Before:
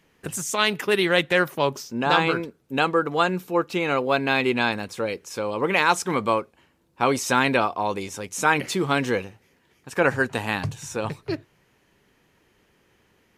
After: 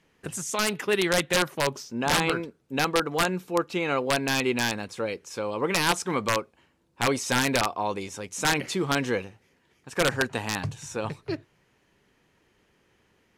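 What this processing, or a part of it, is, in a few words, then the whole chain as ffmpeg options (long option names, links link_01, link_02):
overflowing digital effects unit: -af "aeval=exprs='(mod(3.35*val(0)+1,2)-1)/3.35':channel_layout=same,lowpass=11000,volume=-3dB"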